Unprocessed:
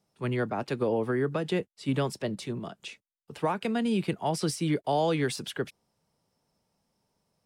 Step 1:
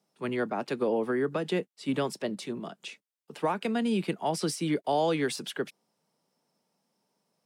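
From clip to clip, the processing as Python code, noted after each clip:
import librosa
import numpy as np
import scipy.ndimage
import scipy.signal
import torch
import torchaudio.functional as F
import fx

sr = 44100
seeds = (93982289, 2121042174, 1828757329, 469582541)

y = scipy.signal.sosfilt(scipy.signal.butter(4, 170.0, 'highpass', fs=sr, output='sos'), x)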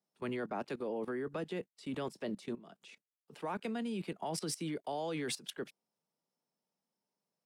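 y = fx.level_steps(x, sr, step_db=18)
y = F.gain(torch.from_numpy(y), -1.0).numpy()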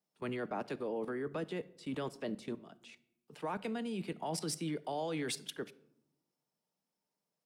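y = fx.room_shoebox(x, sr, seeds[0], volume_m3=2100.0, walls='furnished', distance_m=0.48)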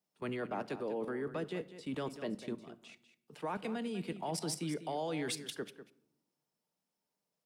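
y = x + 10.0 ** (-12.5 / 20.0) * np.pad(x, (int(196 * sr / 1000.0), 0))[:len(x)]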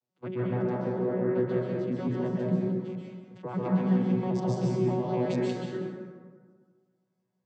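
y = fx.vocoder_arp(x, sr, chord='bare fifth', root=47, every_ms=86)
y = fx.rev_plate(y, sr, seeds[1], rt60_s=1.6, hf_ratio=0.45, predelay_ms=115, drr_db=-5.0)
y = F.gain(torch.from_numpy(y), 4.5).numpy()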